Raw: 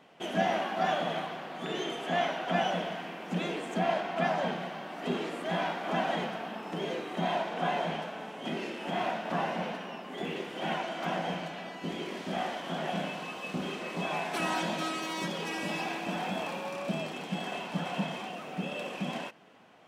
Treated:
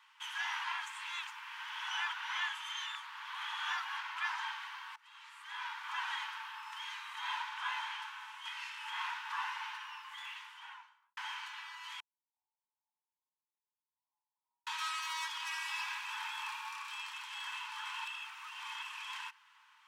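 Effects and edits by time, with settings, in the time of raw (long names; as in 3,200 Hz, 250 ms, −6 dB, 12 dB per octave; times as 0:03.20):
0:00.64–0:03.97: reverse
0:04.96–0:06.14: fade in, from −24 dB
0:10.11–0:11.17: fade out and dull
0:12.00–0:14.67: inverse Chebyshev low-pass filter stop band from 1,400 Hz, stop band 80 dB
0:18.05–0:18.82: reverse
whole clip: Chebyshev high-pass filter 880 Hz, order 8; level −1 dB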